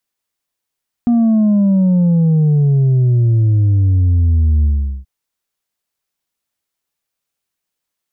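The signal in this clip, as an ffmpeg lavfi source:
ffmpeg -f lavfi -i "aevalsrc='0.335*clip((3.98-t)/0.41,0,1)*tanh(1.41*sin(2*PI*240*3.98/log(65/240)*(exp(log(65/240)*t/3.98)-1)))/tanh(1.41)':duration=3.98:sample_rate=44100" out.wav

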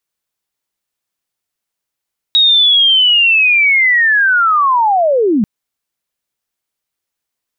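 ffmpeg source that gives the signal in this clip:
ffmpeg -f lavfi -i "aevalsrc='pow(10,(-6-3*t/3.09)/20)*sin(2*PI*(3800*t-3610*t*t/(2*3.09)))':duration=3.09:sample_rate=44100" out.wav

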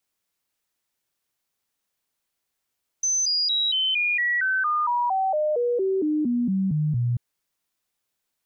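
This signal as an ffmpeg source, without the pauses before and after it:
ffmpeg -f lavfi -i "aevalsrc='0.1*clip(min(mod(t,0.23),0.23-mod(t,0.23))/0.005,0,1)*sin(2*PI*6130*pow(2,-floor(t/0.23)/3)*mod(t,0.23))':duration=4.14:sample_rate=44100" out.wav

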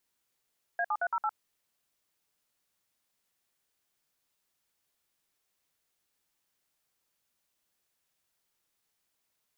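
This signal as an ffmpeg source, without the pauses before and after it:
ffmpeg -f lavfi -i "aevalsrc='0.0335*clip(min(mod(t,0.112),0.055-mod(t,0.112))/0.002,0,1)*(eq(floor(t/0.112),0)*(sin(2*PI*697*mod(t,0.112))+sin(2*PI*1633*mod(t,0.112)))+eq(floor(t/0.112),1)*(sin(2*PI*852*mod(t,0.112))+sin(2*PI*1209*mod(t,0.112)))+eq(floor(t/0.112),2)*(sin(2*PI*697*mod(t,0.112))+sin(2*PI*1477*mod(t,0.112)))+eq(floor(t/0.112),3)*(sin(2*PI*941*mod(t,0.112))+sin(2*PI*1336*mod(t,0.112)))+eq(floor(t/0.112),4)*(sin(2*PI*852*mod(t,0.112))+sin(2*PI*1336*mod(t,0.112))))':duration=0.56:sample_rate=44100" out.wav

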